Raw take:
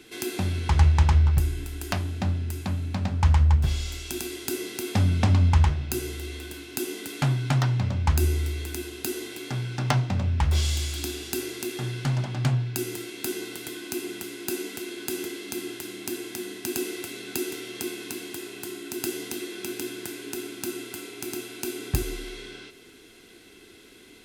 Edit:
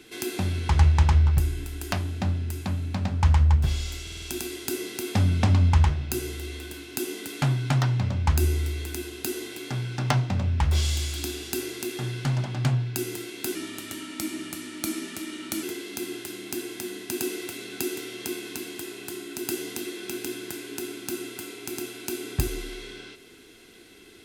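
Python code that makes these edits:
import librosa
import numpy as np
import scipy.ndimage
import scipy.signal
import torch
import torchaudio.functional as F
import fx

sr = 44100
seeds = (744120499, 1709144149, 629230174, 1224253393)

y = fx.edit(x, sr, fx.stutter(start_s=4.02, slice_s=0.05, count=5),
    fx.speed_span(start_s=13.35, length_s=1.83, speed=0.88), tone=tone)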